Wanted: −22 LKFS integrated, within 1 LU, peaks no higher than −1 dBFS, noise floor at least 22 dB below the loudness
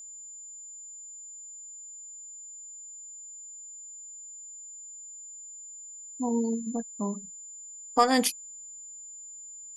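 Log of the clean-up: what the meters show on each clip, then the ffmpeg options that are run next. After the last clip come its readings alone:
interfering tone 7,100 Hz; level of the tone −42 dBFS; integrated loudness −34.0 LKFS; sample peak −8.0 dBFS; target loudness −22.0 LKFS
→ -af "bandreject=frequency=7100:width=30"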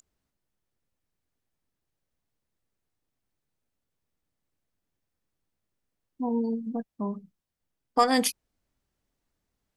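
interfering tone none found; integrated loudness −28.0 LKFS; sample peak −8.5 dBFS; target loudness −22.0 LKFS
→ -af "volume=6dB"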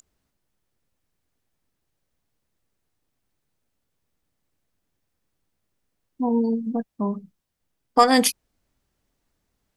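integrated loudness −22.0 LKFS; sample peak −2.5 dBFS; background noise floor −78 dBFS

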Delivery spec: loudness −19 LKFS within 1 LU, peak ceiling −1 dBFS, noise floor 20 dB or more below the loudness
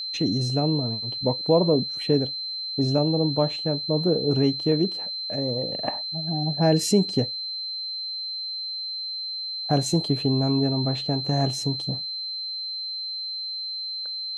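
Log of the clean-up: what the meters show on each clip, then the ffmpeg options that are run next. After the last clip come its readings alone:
interfering tone 4,100 Hz; level of the tone −29 dBFS; integrated loudness −24.5 LKFS; sample peak −8.0 dBFS; target loudness −19.0 LKFS
→ -af "bandreject=frequency=4100:width=30"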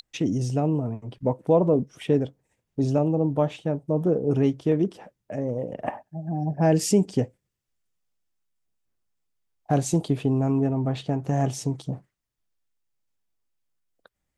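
interfering tone none found; integrated loudness −25.0 LKFS; sample peak −8.5 dBFS; target loudness −19.0 LKFS
→ -af "volume=6dB"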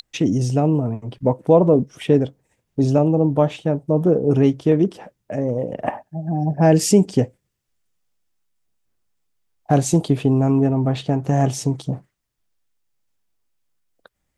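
integrated loudness −19.0 LKFS; sample peak −2.5 dBFS; background noise floor −75 dBFS

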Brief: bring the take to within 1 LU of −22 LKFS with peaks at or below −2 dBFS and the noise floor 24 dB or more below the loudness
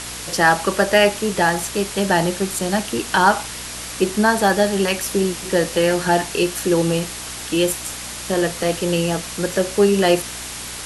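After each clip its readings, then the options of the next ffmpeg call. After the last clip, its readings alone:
mains hum 60 Hz; hum harmonics up to 300 Hz; level of the hum −40 dBFS; background noise floor −31 dBFS; target noise floor −44 dBFS; integrated loudness −19.5 LKFS; sample peak −2.0 dBFS; target loudness −22.0 LKFS
→ -af "bandreject=frequency=60:width_type=h:width=4,bandreject=frequency=120:width_type=h:width=4,bandreject=frequency=180:width_type=h:width=4,bandreject=frequency=240:width_type=h:width=4,bandreject=frequency=300:width_type=h:width=4"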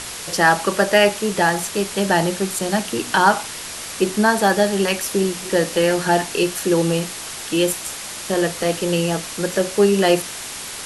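mains hum none found; background noise floor −32 dBFS; target noise floor −44 dBFS
→ -af "afftdn=noise_reduction=12:noise_floor=-32"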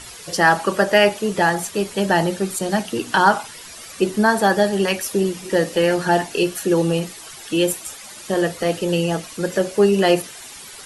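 background noise floor −39 dBFS; target noise floor −44 dBFS
→ -af "afftdn=noise_reduction=6:noise_floor=-39"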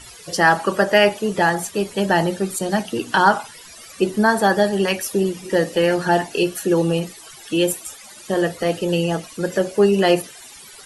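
background noise floor −42 dBFS; target noise floor −44 dBFS
→ -af "afftdn=noise_reduction=6:noise_floor=-42"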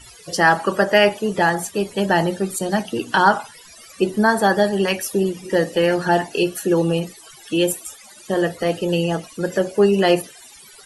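background noise floor −45 dBFS; integrated loudness −19.5 LKFS; sample peak −2.0 dBFS; target loudness −22.0 LKFS
→ -af "volume=-2.5dB"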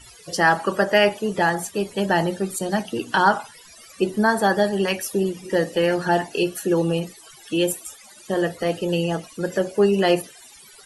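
integrated loudness −22.0 LKFS; sample peak −4.5 dBFS; background noise floor −47 dBFS

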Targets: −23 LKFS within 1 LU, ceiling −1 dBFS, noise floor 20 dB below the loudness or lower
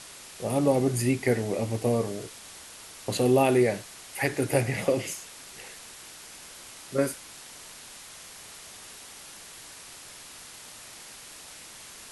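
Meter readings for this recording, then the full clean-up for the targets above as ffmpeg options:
background noise floor −46 dBFS; target noise floor −47 dBFS; integrated loudness −27.0 LKFS; sample peak −9.0 dBFS; target loudness −23.0 LKFS
→ -af "afftdn=noise_reduction=6:noise_floor=-46"
-af "volume=4dB"

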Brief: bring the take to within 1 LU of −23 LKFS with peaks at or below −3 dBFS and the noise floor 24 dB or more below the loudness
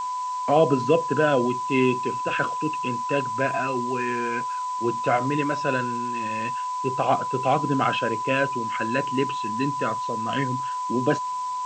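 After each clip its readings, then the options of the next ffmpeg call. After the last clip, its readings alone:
interfering tone 1,000 Hz; level of the tone −26 dBFS; background noise floor −29 dBFS; target noise floor −49 dBFS; integrated loudness −24.5 LKFS; sample peak −7.0 dBFS; target loudness −23.0 LKFS
→ -af "bandreject=frequency=1000:width=30"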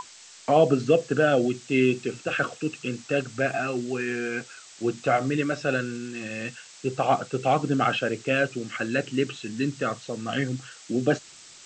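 interfering tone none found; background noise floor −48 dBFS; target noise floor −50 dBFS
→ -af "afftdn=noise_reduction=6:noise_floor=-48"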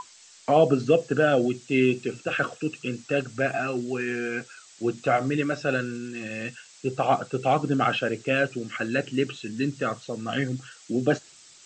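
background noise floor −52 dBFS; integrated loudness −26.0 LKFS; sample peak −8.0 dBFS; target loudness −23.0 LKFS
→ -af "volume=3dB"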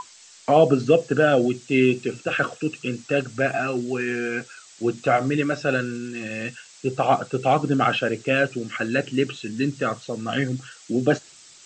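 integrated loudness −23.0 LKFS; sample peak −5.0 dBFS; background noise floor −49 dBFS

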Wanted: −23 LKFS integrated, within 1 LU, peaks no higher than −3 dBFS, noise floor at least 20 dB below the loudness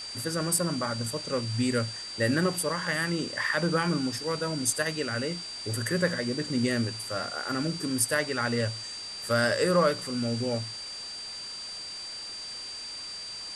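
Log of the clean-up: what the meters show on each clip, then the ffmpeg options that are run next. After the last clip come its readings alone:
interfering tone 4,700 Hz; level of the tone −37 dBFS; background noise floor −39 dBFS; target noise floor −49 dBFS; integrated loudness −29.0 LKFS; sample peak −11.5 dBFS; target loudness −23.0 LKFS
→ -af "bandreject=frequency=4700:width=30"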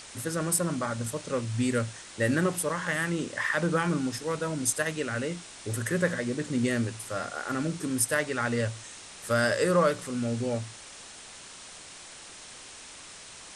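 interfering tone none found; background noise floor −47 dBFS; target noise floor −49 dBFS
→ -af "afftdn=noise_reduction=6:noise_floor=-47"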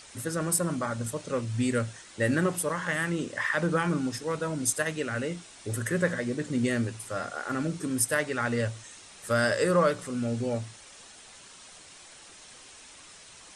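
background noise floor −50 dBFS; integrated loudness −29.0 LKFS; sample peak −11.0 dBFS; target loudness −23.0 LKFS
→ -af "volume=6dB"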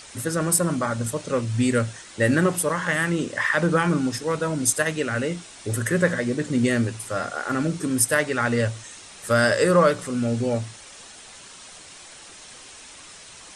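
integrated loudness −23.0 LKFS; sample peak −5.0 dBFS; background noise floor −44 dBFS

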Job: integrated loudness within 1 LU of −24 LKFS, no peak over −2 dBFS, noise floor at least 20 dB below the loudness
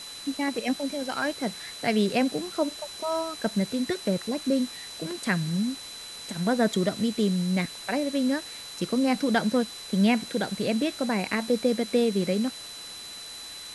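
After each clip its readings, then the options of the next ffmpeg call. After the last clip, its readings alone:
interfering tone 4,000 Hz; level of the tone −40 dBFS; background noise floor −41 dBFS; target noise floor −48 dBFS; integrated loudness −27.5 LKFS; sample peak −10.0 dBFS; target loudness −24.0 LKFS
→ -af "bandreject=frequency=4000:width=30"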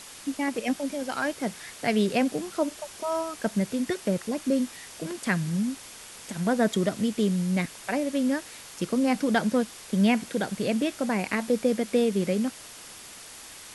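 interfering tone none found; background noise floor −45 dBFS; target noise floor −48 dBFS
→ -af "afftdn=noise_reduction=6:noise_floor=-45"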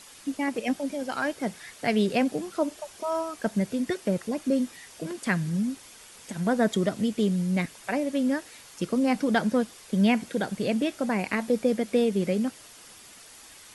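background noise floor −49 dBFS; integrated loudness −27.5 LKFS; sample peak −10.0 dBFS; target loudness −24.0 LKFS
→ -af "volume=3.5dB"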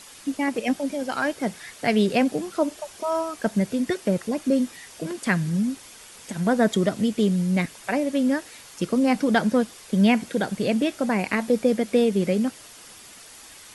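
integrated loudness −24.0 LKFS; sample peak −6.5 dBFS; background noise floor −46 dBFS

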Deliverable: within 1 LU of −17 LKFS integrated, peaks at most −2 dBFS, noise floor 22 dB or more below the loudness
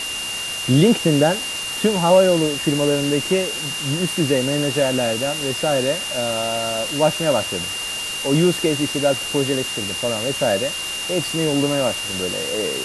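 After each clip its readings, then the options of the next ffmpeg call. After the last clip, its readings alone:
interfering tone 2,800 Hz; level of the tone −26 dBFS; background noise floor −27 dBFS; target noise floor −42 dBFS; integrated loudness −19.5 LKFS; sample peak −3.0 dBFS; target loudness −17.0 LKFS
→ -af "bandreject=frequency=2800:width=30"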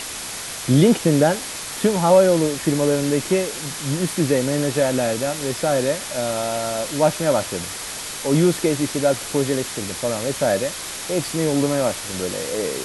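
interfering tone none found; background noise floor −31 dBFS; target noise floor −43 dBFS
→ -af "afftdn=noise_reduction=12:noise_floor=-31"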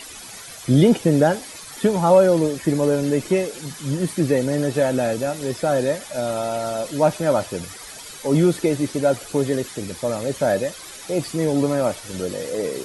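background noise floor −38 dBFS; target noise floor −43 dBFS
→ -af "afftdn=noise_reduction=6:noise_floor=-38"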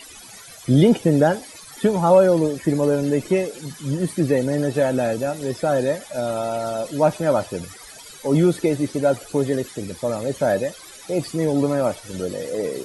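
background noise floor −42 dBFS; target noise floor −43 dBFS
→ -af "afftdn=noise_reduction=6:noise_floor=-42"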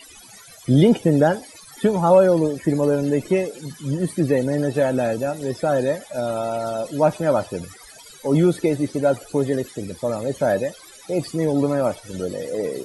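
background noise floor −45 dBFS; integrated loudness −21.0 LKFS; sample peak −3.5 dBFS; target loudness −17.0 LKFS
→ -af "volume=4dB,alimiter=limit=-2dB:level=0:latency=1"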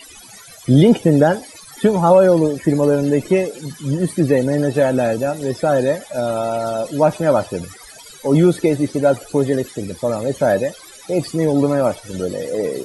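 integrated loudness −17.5 LKFS; sample peak −2.0 dBFS; background noise floor −41 dBFS

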